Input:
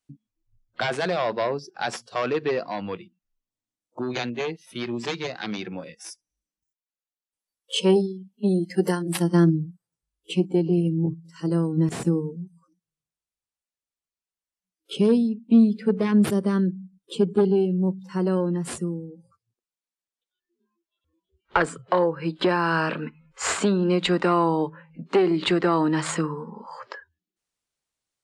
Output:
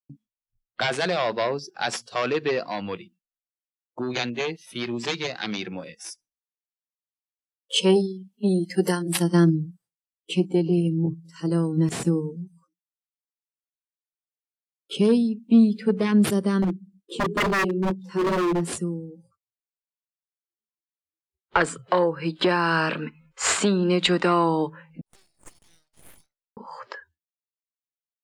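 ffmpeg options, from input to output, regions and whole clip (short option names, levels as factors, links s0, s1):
-filter_complex "[0:a]asettb=1/sr,asplit=3[s0][s1][s2];[s0]atrim=end=16.624[s3];[s1]atrim=start=16.62:end=18.73,asetpts=PTS-STARTPTS,afade=t=in:d=0.004:c=qsin,afade=t=out:st=2.106:d=0.004:c=qsin,equalizer=f=360:w=1.2:g=10.5,flanger=delay=19.5:depth=4.8:speed=2.2,aeval=exprs='0.126*(abs(mod(val(0)/0.126+3,4)-2)-1)':c=same[s4];[s2]atrim=start=18.726[s5];[s3][s4]acrossfade=d=0.004:c1=hsin:c2=qsin[s6];[s6][s5]acrossfade=d=0.004:c1=qsin:c2=hsin,asettb=1/sr,asplit=3[s7][s8][s9];[s7]atrim=end=25.014[s10];[s8]atrim=start=25.01:end=26.57,asetpts=PTS-STARTPTS,afade=t=in:d=0.004:c=qsin,afade=t=out:st=1.556:d=0.004:c=qsin,bandpass=f=5000:t=q:w=13,aeval=exprs='abs(val(0))':c=same[s11];[s9]atrim=start=26.566[s12];[s10][s11]acrossfade=d=0.004:c1=hsin:c2=qsin[s13];[s13][s12]acrossfade=d=0.004:c1=qsin:c2=hsin,agate=range=0.0224:threshold=0.00251:ratio=3:detection=peak,adynamicequalizer=threshold=0.0126:dfrequency=1900:dqfactor=0.7:tfrequency=1900:tqfactor=0.7:attack=5:release=100:ratio=0.375:range=2.5:mode=boostabove:tftype=highshelf"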